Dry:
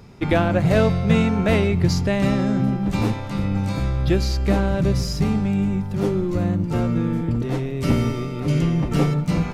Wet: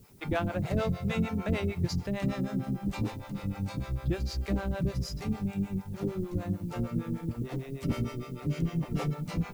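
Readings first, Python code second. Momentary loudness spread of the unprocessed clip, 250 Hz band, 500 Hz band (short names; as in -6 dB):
5 LU, -11.5 dB, -13.0 dB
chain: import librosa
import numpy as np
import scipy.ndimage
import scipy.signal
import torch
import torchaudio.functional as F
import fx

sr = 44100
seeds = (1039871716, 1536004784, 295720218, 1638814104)

y = fx.harmonic_tremolo(x, sr, hz=6.6, depth_pct=100, crossover_hz=450.0)
y = fx.dmg_noise_colour(y, sr, seeds[0], colour='blue', level_db=-57.0)
y = F.gain(torch.from_numpy(y), -7.0).numpy()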